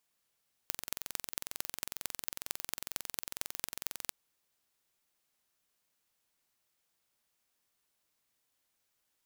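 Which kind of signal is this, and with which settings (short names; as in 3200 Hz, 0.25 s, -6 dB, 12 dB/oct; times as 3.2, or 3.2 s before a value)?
pulse train 22.1/s, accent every 5, -5.5 dBFS 3.43 s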